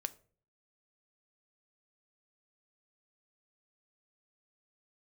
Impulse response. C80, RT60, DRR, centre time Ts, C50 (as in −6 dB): 23.5 dB, 0.45 s, 11.5 dB, 3 ms, 19.5 dB